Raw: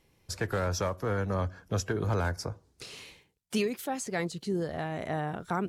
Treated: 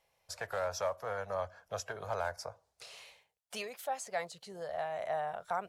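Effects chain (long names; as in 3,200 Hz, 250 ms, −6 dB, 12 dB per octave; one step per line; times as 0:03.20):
low shelf with overshoot 440 Hz −12 dB, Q 3
level −6 dB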